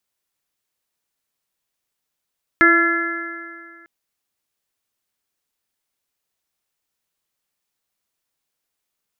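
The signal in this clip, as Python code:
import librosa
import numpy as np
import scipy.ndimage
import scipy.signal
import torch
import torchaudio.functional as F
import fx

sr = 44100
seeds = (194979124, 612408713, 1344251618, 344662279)

y = fx.additive_stiff(sr, length_s=1.25, hz=334.0, level_db=-15, upper_db=(-11.5, -18.5, 1.0, 4.0, -2.0), decay_s=2.06, stiffness=0.0019)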